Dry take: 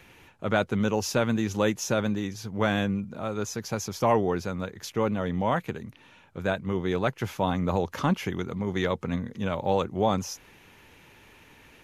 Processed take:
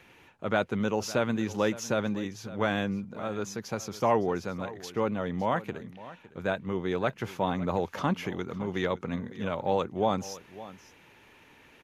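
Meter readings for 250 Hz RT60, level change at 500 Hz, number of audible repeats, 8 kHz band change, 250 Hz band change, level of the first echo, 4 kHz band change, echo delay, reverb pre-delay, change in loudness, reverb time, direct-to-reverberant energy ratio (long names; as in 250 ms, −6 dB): no reverb audible, −2.0 dB, 1, −5.5 dB, −3.0 dB, −17.0 dB, −3.5 dB, 559 ms, no reverb audible, −2.5 dB, no reverb audible, no reverb audible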